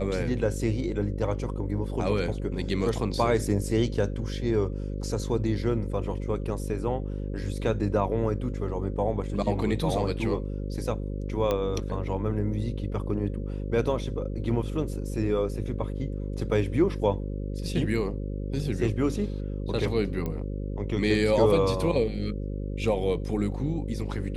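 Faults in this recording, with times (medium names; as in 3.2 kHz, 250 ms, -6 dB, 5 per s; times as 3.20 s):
buzz 50 Hz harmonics 11 -32 dBFS
11.51 s: pop -14 dBFS
20.26 s: pop -19 dBFS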